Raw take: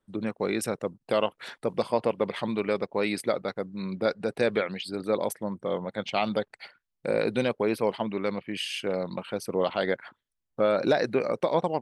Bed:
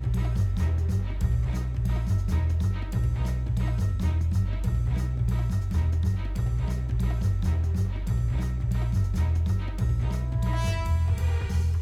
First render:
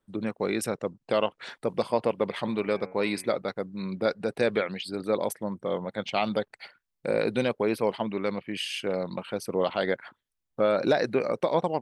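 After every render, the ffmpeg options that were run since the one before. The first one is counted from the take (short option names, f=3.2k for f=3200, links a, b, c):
-filter_complex "[0:a]asettb=1/sr,asplit=3[a][b][c];[a]atrim=end=0.684[d];[b]atrim=start=0.68:end=1.5,asetpts=PTS-STARTPTS,afade=t=in:d=0.004:c=qsin,afade=t=out:st=0.816:d=0.004:c=qsin,lowpass=f=8k:w=0.5412,lowpass=f=8k:w=1.3066[e];[c]atrim=start=1.496[f];[d][e]acrossfade=d=0.004:c1=hsin:c2=qsin[g];[g][f]acrossfade=d=0.004:c1=qsin:c2=hsin,asplit=3[h][i][j];[h]afade=t=out:st=2.44:d=0.02[k];[i]bandreject=f=92.54:t=h:w=4,bandreject=f=185.08:t=h:w=4,bandreject=f=277.62:t=h:w=4,bandreject=f=370.16:t=h:w=4,bandreject=f=462.7:t=h:w=4,bandreject=f=555.24:t=h:w=4,bandreject=f=647.78:t=h:w=4,bandreject=f=740.32:t=h:w=4,bandreject=f=832.86:t=h:w=4,bandreject=f=925.4:t=h:w=4,bandreject=f=1.01794k:t=h:w=4,bandreject=f=1.11048k:t=h:w=4,bandreject=f=1.20302k:t=h:w=4,bandreject=f=1.29556k:t=h:w=4,bandreject=f=1.3881k:t=h:w=4,bandreject=f=1.48064k:t=h:w=4,bandreject=f=1.57318k:t=h:w=4,bandreject=f=1.66572k:t=h:w=4,bandreject=f=1.75826k:t=h:w=4,bandreject=f=1.8508k:t=h:w=4,bandreject=f=1.94334k:t=h:w=4,bandreject=f=2.03588k:t=h:w=4,bandreject=f=2.12842k:t=h:w=4,bandreject=f=2.22096k:t=h:w=4,bandreject=f=2.3135k:t=h:w=4,bandreject=f=2.40604k:t=h:w=4,bandreject=f=2.49858k:t=h:w=4,bandreject=f=2.59112k:t=h:w=4,afade=t=in:st=2.44:d=0.02,afade=t=out:st=3.36:d=0.02[l];[j]afade=t=in:st=3.36:d=0.02[m];[k][l][m]amix=inputs=3:normalize=0"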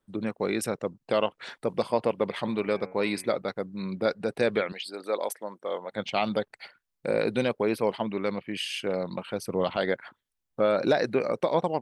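-filter_complex "[0:a]asettb=1/sr,asplit=3[a][b][c];[a]atrim=end=4.724[d];[b]atrim=start=4.72:end=5.92,asetpts=PTS-STARTPTS,afade=t=in:d=0.004:c=qsin,afade=t=out:st=1.196:d=0.004:c=qsin,highpass=460[e];[c]atrim=start=5.916[f];[d][e]acrossfade=d=0.004:c1=hsin:c2=qsin[g];[g][f]acrossfade=d=0.004:c1=qsin:c2=hsin,asettb=1/sr,asplit=3[h][i][j];[h]atrim=end=9.264[k];[i]atrim=start=9.26:end=9.77,asetpts=PTS-STARTPTS,afade=t=in:d=0.004:c=qsin,afade=t=out:st=0.506:d=0.004:c=qsin,asubboost=boost=10.5:cutoff=220[l];[j]atrim=start=9.766[m];[k][l]acrossfade=d=0.004:c1=hsin:c2=qsin[n];[n][m]acrossfade=d=0.004:c1=qsin:c2=hsin"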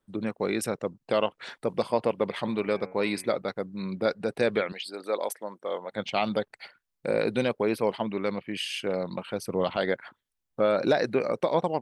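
-af anull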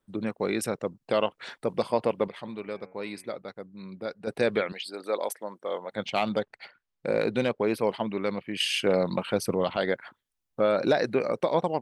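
-filter_complex "[0:a]asettb=1/sr,asplit=3[a][b][c];[a]atrim=end=6.154[d];[b]atrim=start=6.15:end=7.74,asetpts=PTS-STARTPTS,afade=t=in:d=0.004:c=qsin,afade=t=out:st=1.586:d=0.004:c=qsin,adynamicsmooth=sensitivity=5:basefreq=5.9k[e];[c]atrim=start=7.736[f];[d][e]acrossfade=d=0.004:c1=hsin:c2=qsin[g];[g][f]acrossfade=d=0.004:c1=qsin:c2=hsin,asettb=1/sr,asplit=3[h][i][j];[h]atrim=end=8.604[k];[i]atrim=start=8.6:end=9.55,asetpts=PTS-STARTPTS,afade=t=in:d=0.004:c=qsin,afade=t=out:st=0.946:d=0.004:c=qsin,acontrast=41[l];[j]atrim=start=9.546[m];[k][l]acrossfade=d=0.004:c1=hsin:c2=qsin[n];[n][m]acrossfade=d=0.004:c1=qsin:c2=hsin,asplit=3[o][p][q];[o]atrim=end=2.282[r];[p]atrim=start=2.278:end=4.272,asetpts=PTS-STARTPTS,volume=-8.5dB[s];[q]atrim=start=4.268[t];[r][s]acrossfade=d=0.004:c1=hsin:c2=hsin[u];[u][t]acrossfade=d=0.004:c1=hsin:c2=hsin"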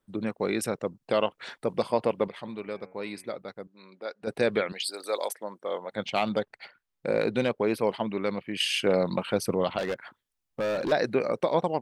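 -filter_complex "[0:a]asettb=1/sr,asplit=3[a][b][c];[a]atrim=end=3.674[d];[b]atrim=start=3.67:end=4.23,asetpts=PTS-STARTPTS,afade=t=in:d=0.004:c=qsin,afade=t=out:st=0.556:d=0.004:c=qsin,highpass=450,lowpass=7.1k[e];[c]atrim=start=4.226[f];[d][e]acrossfade=d=0.004:c1=hsin:c2=qsin[g];[g][f]acrossfade=d=0.004:c1=qsin:c2=hsin,asettb=1/sr,asplit=3[h][i][j];[h]atrim=end=4.804[k];[i]atrim=start=4.8:end=5.29,asetpts=PTS-STARTPTS,afade=t=in:d=0.004:c=qsin,afade=t=out:st=0.486:d=0.004:c=qsin,bass=f=250:g=-14,treble=f=4k:g=13[l];[j]atrim=start=5.286[m];[k][l]acrossfade=d=0.004:c1=hsin:c2=qsin[n];[n][m]acrossfade=d=0.004:c1=qsin:c2=hsin,asettb=1/sr,asplit=3[o][p][q];[o]atrim=end=9.784[r];[p]atrim=start=9.78:end=10.92,asetpts=PTS-STARTPTS,afade=t=in:d=0.004:c=qsin,afade=t=out:st=1.136:d=0.004:c=qsin,asoftclip=type=hard:threshold=-25.5dB[s];[q]atrim=start=10.916[t];[r][s]acrossfade=d=0.004:c1=hsin:c2=qsin[u];[u][t]acrossfade=d=0.004:c1=qsin:c2=hsin"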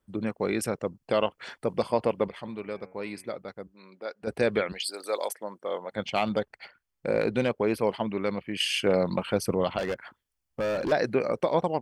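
-af "equalizer=f=62:w=1.8:g=13.5,bandreject=f=3.8k:w=9.8"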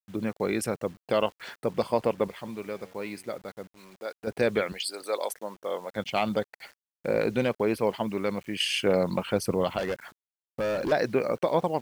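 -af "acrusher=bits=8:mix=0:aa=0.000001"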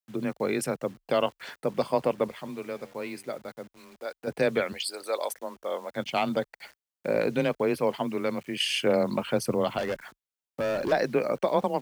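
-af "afreqshift=21"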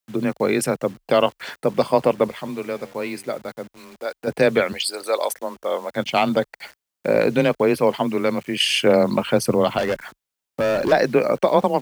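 -af "volume=8dB"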